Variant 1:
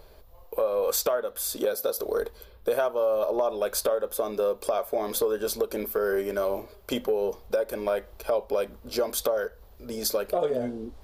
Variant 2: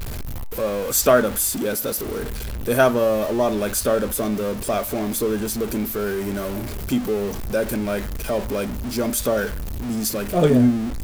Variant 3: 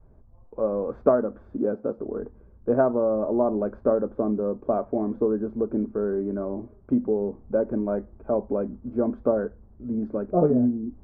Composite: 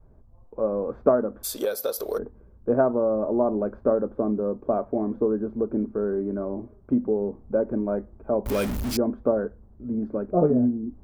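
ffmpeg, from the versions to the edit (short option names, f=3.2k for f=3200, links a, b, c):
-filter_complex "[2:a]asplit=3[a][b][c];[a]atrim=end=1.45[d];[0:a]atrim=start=1.43:end=2.19[e];[b]atrim=start=2.17:end=8.462[f];[1:a]atrim=start=8.458:end=8.972[g];[c]atrim=start=8.968[h];[d][e]acrossfade=d=0.02:c1=tri:c2=tri[i];[i][f]acrossfade=d=0.02:c1=tri:c2=tri[j];[j][g]acrossfade=d=0.004:c1=hsin:c2=hsin[k];[k][h]acrossfade=d=0.004:c1=hsin:c2=hsin"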